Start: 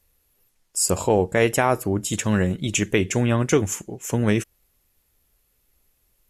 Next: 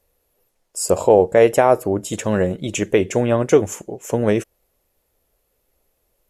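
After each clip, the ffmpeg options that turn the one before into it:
-af "equalizer=f=560:t=o:w=1.5:g=12.5,volume=-3dB"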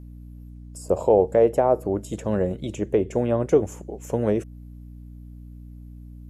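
-filter_complex "[0:a]acrossover=split=670|940[a][b][c];[c]acompressor=threshold=-37dB:ratio=10[d];[a][b][d]amix=inputs=3:normalize=0,aeval=exprs='val(0)+0.0178*(sin(2*PI*60*n/s)+sin(2*PI*2*60*n/s)/2+sin(2*PI*3*60*n/s)/3+sin(2*PI*4*60*n/s)/4+sin(2*PI*5*60*n/s)/5)':c=same,volume=-4.5dB"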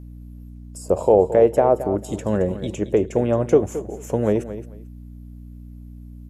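-af "aecho=1:1:221|442:0.224|0.0425,volume=2.5dB"

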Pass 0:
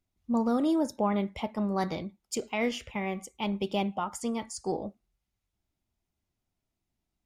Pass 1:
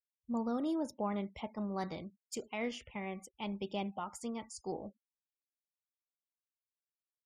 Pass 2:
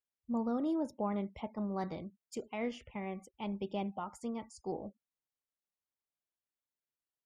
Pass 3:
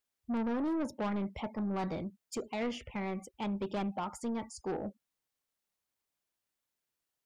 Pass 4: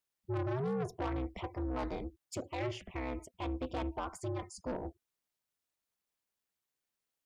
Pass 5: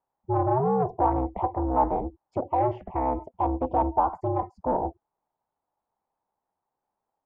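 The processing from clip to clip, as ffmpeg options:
-af "afftfilt=real='re*gte(hypot(re,im),0.00282)':imag='im*gte(hypot(re,im),0.00282)':win_size=1024:overlap=0.75,volume=-8.5dB"
-af "highshelf=f=2.1k:g=-9,volume=1.5dB"
-af "asoftclip=type=tanh:threshold=-37dB,volume=7dB"
-af "aeval=exprs='val(0)*sin(2*PI*130*n/s)':c=same,volume=1dB"
-af "lowpass=f=860:t=q:w=4.9,volume=8dB"

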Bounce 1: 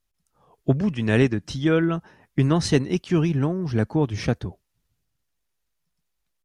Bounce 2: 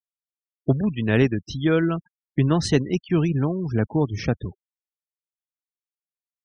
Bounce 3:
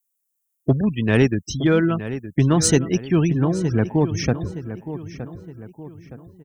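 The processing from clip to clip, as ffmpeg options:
-af "afftfilt=real='re*gte(hypot(re,im),0.02)':imag='im*gte(hypot(re,im),0.02)':win_size=1024:overlap=0.75"
-filter_complex "[0:a]aexciter=amount=3.5:drive=9.3:freq=6.3k,asplit=2[a][b];[b]asoftclip=type=hard:threshold=-13.5dB,volume=-9dB[c];[a][c]amix=inputs=2:normalize=0,asplit=2[d][e];[e]adelay=917,lowpass=f=2.7k:p=1,volume=-12dB,asplit=2[f][g];[g]adelay=917,lowpass=f=2.7k:p=1,volume=0.44,asplit=2[h][i];[i]adelay=917,lowpass=f=2.7k:p=1,volume=0.44,asplit=2[j][k];[k]adelay=917,lowpass=f=2.7k:p=1,volume=0.44[l];[d][f][h][j][l]amix=inputs=5:normalize=0"

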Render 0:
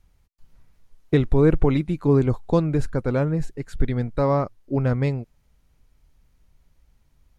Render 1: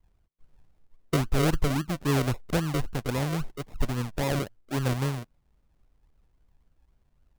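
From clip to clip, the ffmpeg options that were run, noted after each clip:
-filter_complex "[0:a]acrossover=split=390|650[a][b][c];[b]acompressor=threshold=-34dB:ratio=6[d];[a][d][c]amix=inputs=3:normalize=0,acrusher=samples=41:mix=1:aa=0.000001:lfo=1:lforange=24.6:lforate=3.7,volume=-5.5dB"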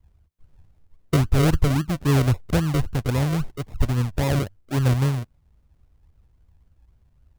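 -af "equalizer=f=82:w=1:g=12,volume=2.5dB"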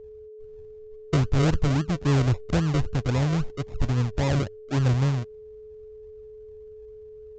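-af "aeval=exprs='val(0)+0.00891*sin(2*PI*430*n/s)':c=same,aresample=16000,asoftclip=type=tanh:threshold=-15dB,aresample=44100"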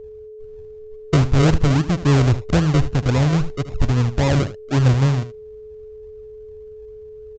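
-af "aecho=1:1:76:0.2,volume=6.5dB"

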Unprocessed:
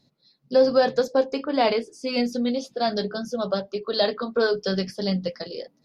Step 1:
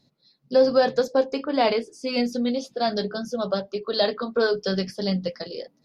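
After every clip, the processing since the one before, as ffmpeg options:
-af anull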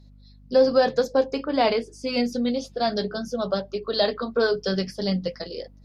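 -af "aeval=exprs='val(0)+0.00355*(sin(2*PI*50*n/s)+sin(2*PI*2*50*n/s)/2+sin(2*PI*3*50*n/s)/3+sin(2*PI*4*50*n/s)/4+sin(2*PI*5*50*n/s)/5)':c=same"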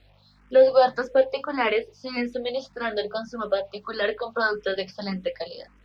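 -filter_complex "[0:a]acrusher=bits=9:mix=0:aa=0.000001,acrossover=split=520 3700:gain=0.251 1 0.0708[a][b][c];[a][b][c]amix=inputs=3:normalize=0,asplit=2[d][e];[e]afreqshift=1.7[f];[d][f]amix=inputs=2:normalize=1,volume=7dB"

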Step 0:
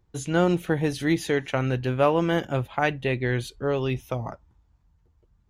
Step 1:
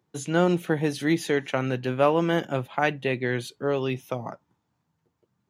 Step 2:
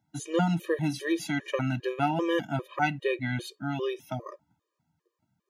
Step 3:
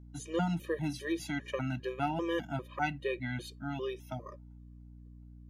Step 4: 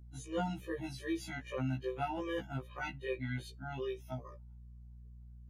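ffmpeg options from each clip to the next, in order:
-af "highpass=f=140:w=0.5412,highpass=f=140:w=1.3066"
-af "afftfilt=real='re*gt(sin(2*PI*2.5*pts/sr)*(1-2*mod(floor(b*sr/1024/320),2)),0)':imag='im*gt(sin(2*PI*2.5*pts/sr)*(1-2*mod(floor(b*sr/1024/320),2)),0)':win_size=1024:overlap=0.75"
-af "aeval=exprs='val(0)+0.00631*(sin(2*PI*60*n/s)+sin(2*PI*2*60*n/s)/2+sin(2*PI*3*60*n/s)/3+sin(2*PI*4*60*n/s)/4+sin(2*PI*5*60*n/s)/5)':c=same,volume=-6dB"
-af "afftfilt=real='re*1.73*eq(mod(b,3),0)':imag='im*1.73*eq(mod(b,3),0)':win_size=2048:overlap=0.75,volume=-2dB"

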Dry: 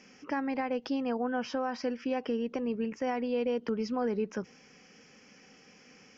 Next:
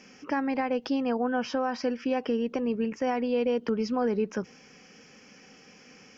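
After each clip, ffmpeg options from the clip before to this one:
-af "bandreject=f=2k:w=27,volume=4dB"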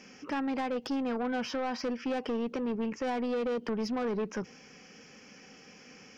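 -af "asoftclip=type=tanh:threshold=-27.5dB"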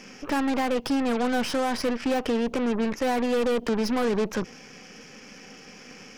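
-af "aeval=exprs='0.0422*(cos(1*acos(clip(val(0)/0.0422,-1,1)))-cos(1*PI/2))+0.0075*(cos(6*acos(clip(val(0)/0.0422,-1,1)))-cos(6*PI/2))':c=same,volume=7dB"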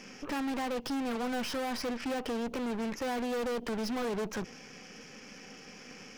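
-af "asoftclip=type=hard:threshold=-27.5dB,volume=-3.5dB"

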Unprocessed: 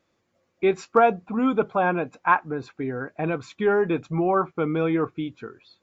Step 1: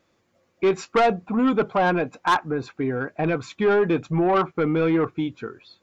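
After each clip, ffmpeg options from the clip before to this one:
-af "asoftclip=type=tanh:threshold=-18dB,volume=4.5dB"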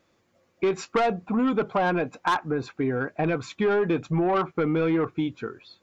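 -af "acompressor=threshold=-20dB:ratio=6"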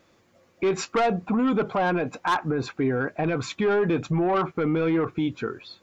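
-af "alimiter=limit=-23.5dB:level=0:latency=1:release=46,volume=6dB"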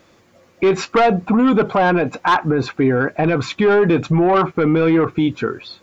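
-filter_complex "[0:a]acrossover=split=5600[a][b];[b]acompressor=threshold=-55dB:ratio=4:attack=1:release=60[c];[a][c]amix=inputs=2:normalize=0,volume=8.5dB"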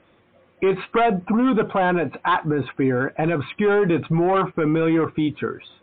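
-af "volume=-4dB" -ar 8000 -c:a libmp3lame -b:a 40k

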